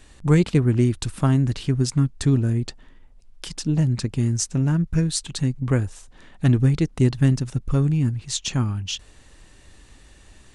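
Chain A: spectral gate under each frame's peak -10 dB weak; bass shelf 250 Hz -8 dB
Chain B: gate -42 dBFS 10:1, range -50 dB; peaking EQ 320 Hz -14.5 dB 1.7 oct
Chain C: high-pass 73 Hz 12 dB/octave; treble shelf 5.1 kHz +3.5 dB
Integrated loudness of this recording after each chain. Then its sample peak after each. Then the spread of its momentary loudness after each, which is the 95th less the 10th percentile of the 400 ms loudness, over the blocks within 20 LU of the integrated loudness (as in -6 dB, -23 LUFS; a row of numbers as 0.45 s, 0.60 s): -35.0 LUFS, -27.0 LUFS, -22.0 LUFS; -11.5 dBFS, -7.5 dBFS, -5.5 dBFS; 21 LU, 6 LU, 8 LU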